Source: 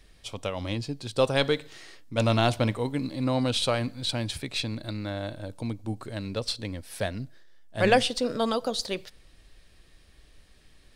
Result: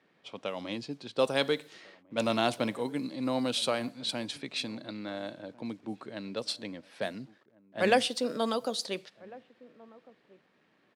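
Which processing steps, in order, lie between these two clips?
requantised 10-bit, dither none; HPF 170 Hz 24 dB/oct; bell 11000 Hz +2.5 dB 0.53 oct; outdoor echo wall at 240 m, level -22 dB; low-pass opened by the level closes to 1900 Hz, open at -25 dBFS; gain -3.5 dB

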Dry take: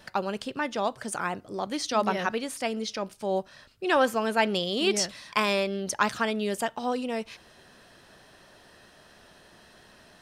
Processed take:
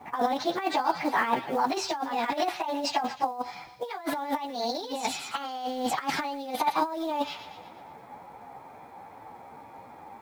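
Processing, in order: pitch shift by moving bins +4.5 st; low-pass opened by the level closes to 1100 Hz, open at -27.5 dBFS; spectral gain 2.33–3.19, 590–2800 Hz +6 dB; in parallel at +1 dB: limiter -21.5 dBFS, peak gain reduction 9.5 dB; on the sum: HPF 83 Hz 12 dB/oct; on a send: thin delay 0.118 s, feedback 54%, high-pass 2600 Hz, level -10 dB; on the sum: negative-ratio compressor -29 dBFS, ratio -0.5; resonant high shelf 5800 Hz -6.5 dB, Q 1.5; companded quantiser 6-bit; bell 850 Hz +11.5 dB 0.58 oct; gain -2.5 dB

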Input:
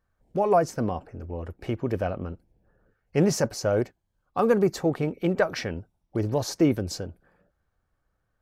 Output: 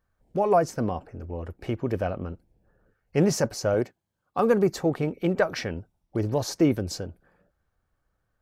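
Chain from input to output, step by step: 3.74–4.39 HPF 110 Hz 12 dB/oct

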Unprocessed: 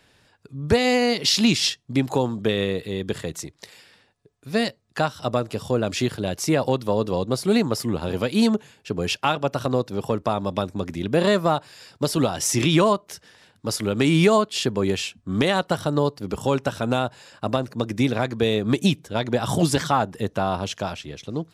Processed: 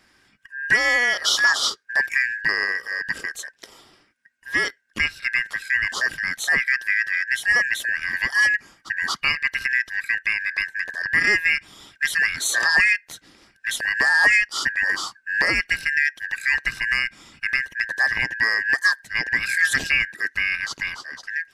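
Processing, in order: four-band scrambler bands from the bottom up 2143

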